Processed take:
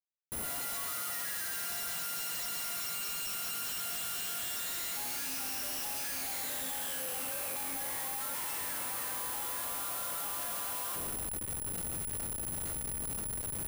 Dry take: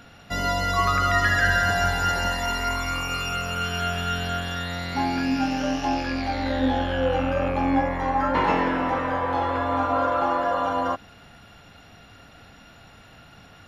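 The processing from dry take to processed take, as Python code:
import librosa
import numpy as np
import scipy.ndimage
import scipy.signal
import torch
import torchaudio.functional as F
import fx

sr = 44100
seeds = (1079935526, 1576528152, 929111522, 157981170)

y = fx.fade_in_head(x, sr, length_s=4.0)
y = np.diff(y, prepend=0.0)
y = fx.echo_feedback(y, sr, ms=117, feedback_pct=54, wet_db=-19.5)
y = fx.schmitt(y, sr, flips_db=-54.0)
y = (np.kron(y[::4], np.eye(4)[0]) * 4)[:len(y)]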